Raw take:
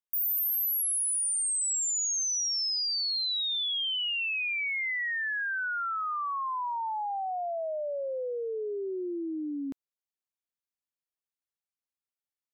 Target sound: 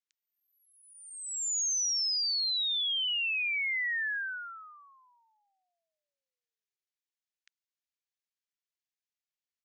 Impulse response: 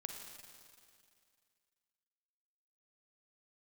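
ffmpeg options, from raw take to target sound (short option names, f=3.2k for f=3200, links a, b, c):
-af "asuperpass=centerf=3500:order=12:qfactor=0.62,atempo=1.3"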